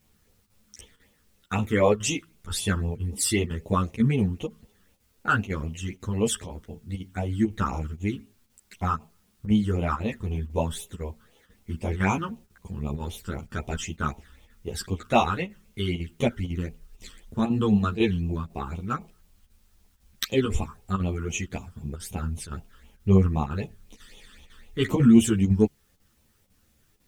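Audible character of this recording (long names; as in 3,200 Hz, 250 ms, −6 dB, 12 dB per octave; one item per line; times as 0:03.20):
phaser sweep stages 12, 3.9 Hz, lowest notch 690–1,600 Hz
a quantiser's noise floor 12 bits, dither triangular
chopped level 2 Hz, depth 60%, duty 90%
a shimmering, thickened sound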